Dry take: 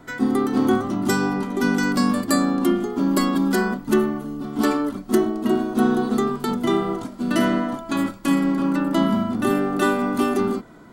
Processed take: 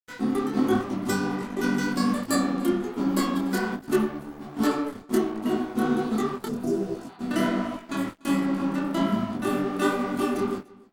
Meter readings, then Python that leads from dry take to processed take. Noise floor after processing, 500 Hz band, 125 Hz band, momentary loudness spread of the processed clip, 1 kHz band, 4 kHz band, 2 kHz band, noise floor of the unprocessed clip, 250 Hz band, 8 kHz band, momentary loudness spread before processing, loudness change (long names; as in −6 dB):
−48 dBFS, −5.0 dB, −4.5 dB, 6 LU, −5.0 dB, −4.5 dB, −5.0 dB, −41 dBFS, −5.0 dB, −4.5 dB, 5 LU, −5.0 dB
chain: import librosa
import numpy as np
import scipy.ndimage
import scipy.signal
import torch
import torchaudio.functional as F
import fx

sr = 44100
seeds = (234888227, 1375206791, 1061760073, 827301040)

p1 = np.sign(x) * np.maximum(np.abs(x) - 10.0 ** (-34.0 / 20.0), 0.0)
p2 = fx.spec_repair(p1, sr, seeds[0], start_s=6.48, length_s=0.67, low_hz=730.0, high_hz=4800.0, source='after')
p3 = p2 + fx.echo_single(p2, sr, ms=292, db=-23.5, dry=0)
y = fx.detune_double(p3, sr, cents=45)